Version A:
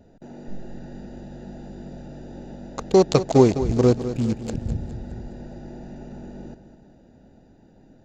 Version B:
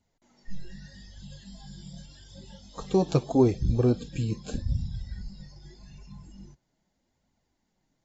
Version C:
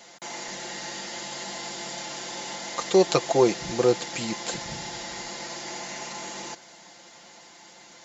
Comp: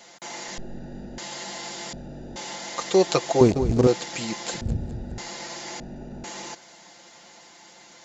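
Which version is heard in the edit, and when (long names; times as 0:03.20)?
C
0:00.58–0:01.18: punch in from A
0:01.93–0:02.36: punch in from A
0:03.41–0:03.87: punch in from A
0:04.61–0:05.18: punch in from A
0:05.80–0:06.24: punch in from A
not used: B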